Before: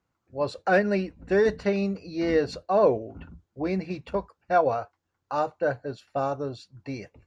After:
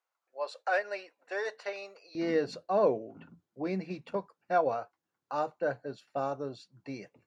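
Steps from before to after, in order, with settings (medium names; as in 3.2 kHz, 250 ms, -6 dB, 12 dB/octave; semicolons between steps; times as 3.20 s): high-pass 560 Hz 24 dB/octave, from 2.15 s 140 Hz; trim -5.5 dB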